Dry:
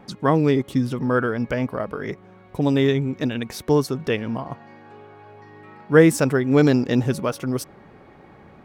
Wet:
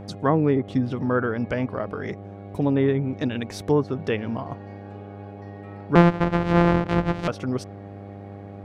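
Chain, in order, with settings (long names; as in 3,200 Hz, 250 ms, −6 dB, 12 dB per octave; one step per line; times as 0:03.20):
0:05.95–0:07.28: samples sorted by size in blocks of 256 samples
treble cut that deepens with the level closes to 1,800 Hz, closed at −15 dBFS
hum with harmonics 100 Hz, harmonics 8, −37 dBFS −4 dB per octave
level −2 dB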